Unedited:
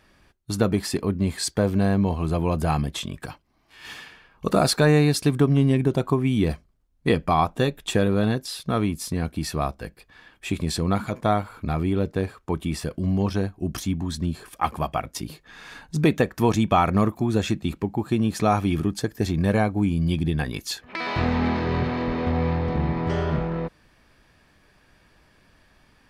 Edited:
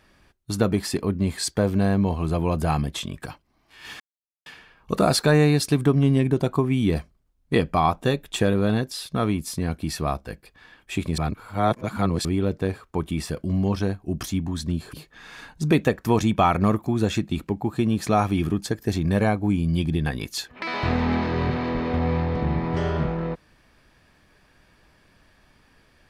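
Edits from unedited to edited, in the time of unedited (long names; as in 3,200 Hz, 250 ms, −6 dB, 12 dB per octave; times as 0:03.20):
0:04.00: splice in silence 0.46 s
0:10.72–0:11.79: reverse
0:14.47–0:15.26: remove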